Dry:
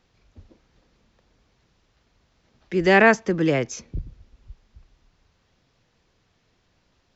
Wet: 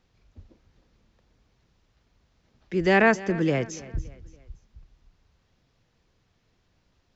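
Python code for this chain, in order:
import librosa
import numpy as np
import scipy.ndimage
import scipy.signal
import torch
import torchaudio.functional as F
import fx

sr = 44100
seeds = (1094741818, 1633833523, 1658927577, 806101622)

p1 = fx.low_shelf(x, sr, hz=190.0, db=5.0)
p2 = p1 + fx.echo_feedback(p1, sr, ms=284, feedback_pct=42, wet_db=-18.5, dry=0)
y = p2 * librosa.db_to_amplitude(-4.5)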